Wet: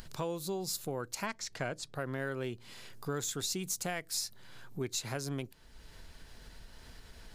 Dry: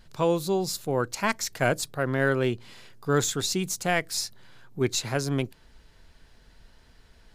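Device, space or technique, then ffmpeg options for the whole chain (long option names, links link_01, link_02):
upward and downward compression: -filter_complex "[0:a]acompressor=mode=upward:threshold=-39dB:ratio=2.5,acompressor=threshold=-33dB:ratio=3,asettb=1/sr,asplit=3[link_01][link_02][link_03];[link_01]atrim=end=1.264[link_04];[link_02]atrim=start=1.26:end=1.95,asetpts=PTS-STARTPTS,afade=type=in:duration=0.004:curve=qsin,afade=type=out:start_time=0.686:duration=0.004:curve=qsin,lowpass=5800[link_05];[link_03]atrim=start=1.946[link_06];[link_04][link_05]acrossfade=duration=0.004:curve1=hsin:curve2=qsin[link_07];[link_07][link_06]acrossfade=duration=0.004:curve1=qsin:curve2=hsin,highshelf=frequency=6400:gain=6.5,volume=-3dB"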